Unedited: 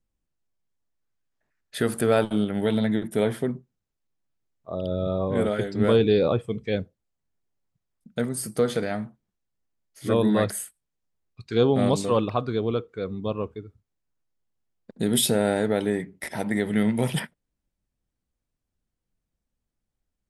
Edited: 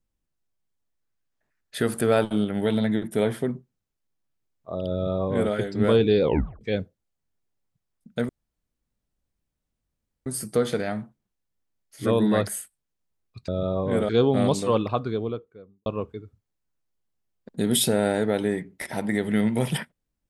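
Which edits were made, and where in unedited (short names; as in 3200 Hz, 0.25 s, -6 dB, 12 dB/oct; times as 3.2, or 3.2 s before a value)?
4.92–5.53 copy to 11.51
6.23 tape stop 0.38 s
8.29 insert room tone 1.97 s
12.33–13.28 studio fade out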